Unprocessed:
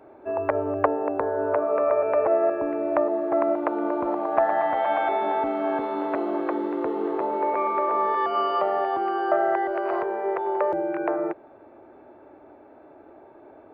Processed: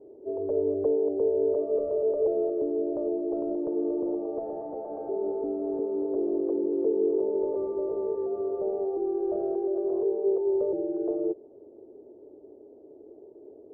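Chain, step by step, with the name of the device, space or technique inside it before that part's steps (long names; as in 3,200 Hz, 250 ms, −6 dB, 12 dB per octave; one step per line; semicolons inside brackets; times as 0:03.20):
0:07.35–0:07.75: high-shelf EQ 2,100 Hz +10.5 dB
overdriven synthesiser ladder filter (soft clipping −18 dBFS, distortion −16 dB; transistor ladder low-pass 470 Hz, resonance 70%)
level +5 dB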